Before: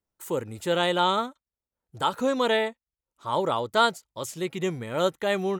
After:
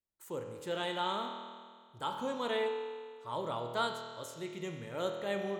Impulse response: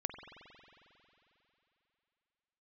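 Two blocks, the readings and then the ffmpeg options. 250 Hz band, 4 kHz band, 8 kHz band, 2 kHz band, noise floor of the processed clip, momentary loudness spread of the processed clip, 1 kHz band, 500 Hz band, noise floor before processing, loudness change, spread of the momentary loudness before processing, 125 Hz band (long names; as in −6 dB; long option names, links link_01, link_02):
−11.5 dB, −10.5 dB, −12.0 dB, −11.0 dB, −60 dBFS, 10 LU, −10.5 dB, −10.0 dB, below −85 dBFS, −11.0 dB, 10 LU, −10.5 dB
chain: -filter_complex "[1:a]atrim=start_sample=2205,asetrate=79380,aresample=44100[link_01];[0:a][link_01]afir=irnorm=-1:irlink=0,volume=-6dB"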